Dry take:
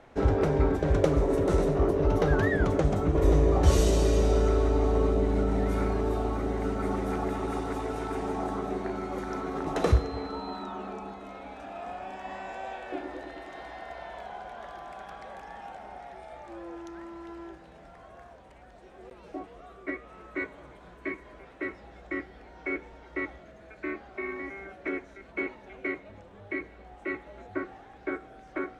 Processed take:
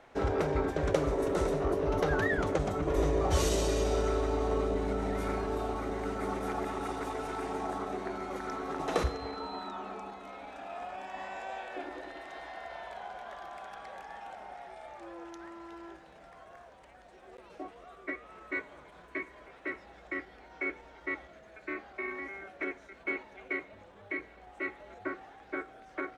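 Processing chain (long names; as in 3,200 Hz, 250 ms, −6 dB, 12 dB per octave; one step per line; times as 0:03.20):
low-shelf EQ 390 Hz −9 dB
tempo change 1.1×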